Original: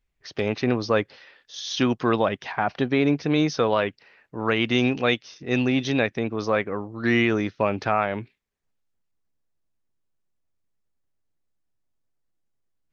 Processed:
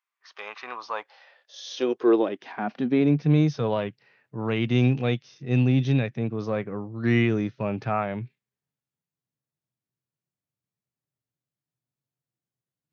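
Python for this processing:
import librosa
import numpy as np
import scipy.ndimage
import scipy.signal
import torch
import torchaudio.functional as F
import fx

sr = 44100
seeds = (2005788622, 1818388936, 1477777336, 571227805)

y = fx.hpss(x, sr, part='percussive', gain_db=-9)
y = fx.filter_sweep_highpass(y, sr, from_hz=1100.0, to_hz=130.0, start_s=0.7, end_s=3.43, q=4.3)
y = y * librosa.db_to_amplitude(-3.0)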